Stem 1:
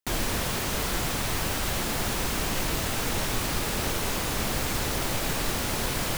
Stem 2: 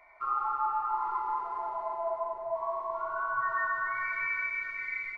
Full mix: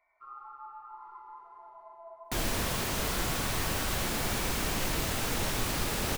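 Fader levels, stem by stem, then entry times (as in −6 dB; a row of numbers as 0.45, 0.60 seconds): −3.0, −16.0 decibels; 2.25, 0.00 seconds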